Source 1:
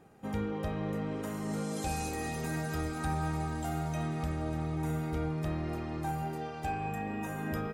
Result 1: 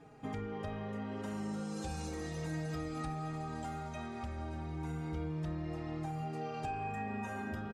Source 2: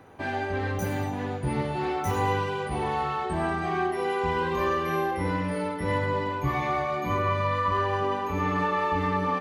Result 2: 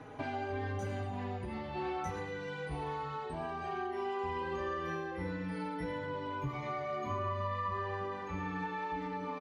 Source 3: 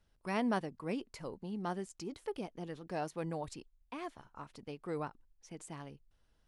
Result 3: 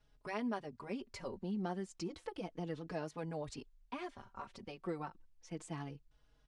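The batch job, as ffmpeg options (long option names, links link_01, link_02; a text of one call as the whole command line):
ffmpeg -i in.wav -filter_complex "[0:a]lowpass=7100,acompressor=threshold=-39dB:ratio=5,asplit=2[link_01][link_02];[link_02]adelay=4.3,afreqshift=-0.32[link_03];[link_01][link_03]amix=inputs=2:normalize=1,volume=5dB" out.wav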